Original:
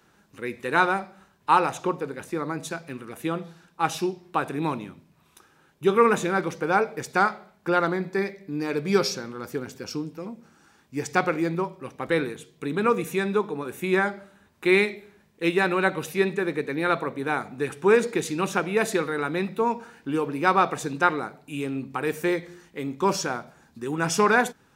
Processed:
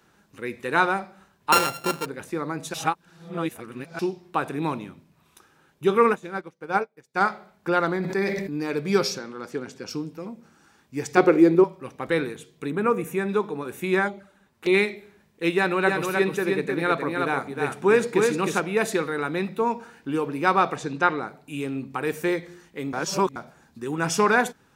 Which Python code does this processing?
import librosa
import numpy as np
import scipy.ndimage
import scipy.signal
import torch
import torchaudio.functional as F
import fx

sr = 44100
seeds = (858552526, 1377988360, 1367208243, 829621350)

y = fx.sample_sort(x, sr, block=32, at=(1.52, 2.06))
y = fx.upward_expand(y, sr, threshold_db=-40.0, expansion=2.5, at=(6.12, 7.21))
y = fx.sustainer(y, sr, db_per_s=34.0, at=(7.87, 8.58))
y = fx.bandpass_edges(y, sr, low_hz=fx.line((9.18, 210.0), (9.87, 120.0)), high_hz=7900.0, at=(9.18, 9.87), fade=0.02)
y = fx.peak_eq(y, sr, hz=380.0, db=13.0, octaves=0.94, at=(11.17, 11.64))
y = fx.peak_eq(y, sr, hz=4300.0, db=-12.0, octaves=1.1, at=(12.7, 13.29))
y = fx.env_flanger(y, sr, rest_ms=11.9, full_db=-23.5, at=(14.07, 14.73), fade=0.02)
y = fx.echo_single(y, sr, ms=309, db=-4.0, at=(15.85, 18.59), fade=0.02)
y = fx.lowpass(y, sr, hz=5900.0, slope=12, at=(20.75, 21.26), fade=0.02)
y = fx.edit(y, sr, fx.reverse_span(start_s=2.74, length_s=1.25),
    fx.reverse_span(start_s=22.93, length_s=0.43), tone=tone)